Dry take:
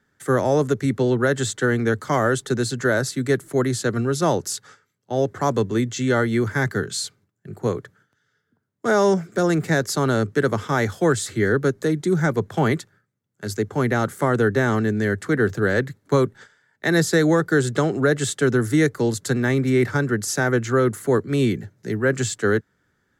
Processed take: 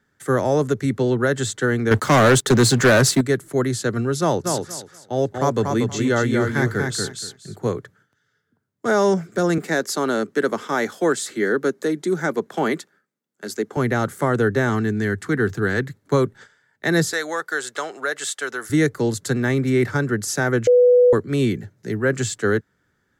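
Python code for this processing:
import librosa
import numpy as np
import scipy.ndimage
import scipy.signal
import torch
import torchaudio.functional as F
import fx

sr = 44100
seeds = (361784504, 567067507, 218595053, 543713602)

y = fx.leveller(x, sr, passes=3, at=(1.91, 3.21))
y = fx.echo_feedback(y, sr, ms=237, feedback_pct=19, wet_db=-4.5, at=(4.44, 7.7), fade=0.02)
y = fx.highpass(y, sr, hz=210.0, slope=24, at=(9.58, 13.77))
y = fx.peak_eq(y, sr, hz=560.0, db=-14.5, octaves=0.23, at=(14.69, 15.87))
y = fx.highpass(y, sr, hz=790.0, slope=12, at=(17.13, 18.7))
y = fx.edit(y, sr, fx.bleep(start_s=20.67, length_s=0.46, hz=493.0, db=-9.5), tone=tone)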